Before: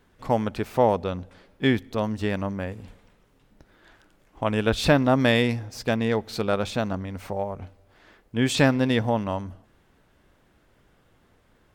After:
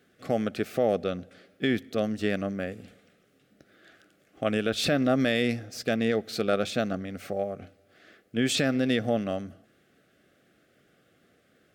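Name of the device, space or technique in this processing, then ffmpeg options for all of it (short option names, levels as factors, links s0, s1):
PA system with an anti-feedback notch: -af "highpass=160,asuperstop=centerf=950:order=4:qfactor=2.1,alimiter=limit=0.2:level=0:latency=1:release=67"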